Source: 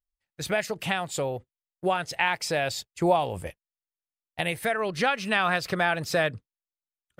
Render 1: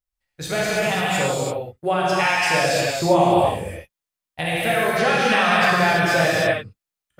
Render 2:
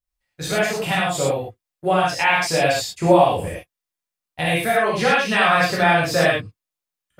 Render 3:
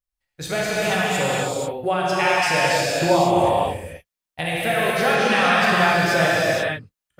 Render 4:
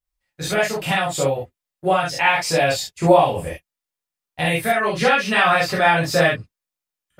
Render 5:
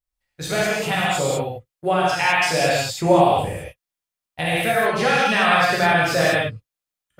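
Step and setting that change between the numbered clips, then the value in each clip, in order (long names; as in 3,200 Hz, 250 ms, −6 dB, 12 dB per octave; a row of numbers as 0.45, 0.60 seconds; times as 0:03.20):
reverb whose tail is shaped and stops, gate: 360, 140, 520, 90, 230 milliseconds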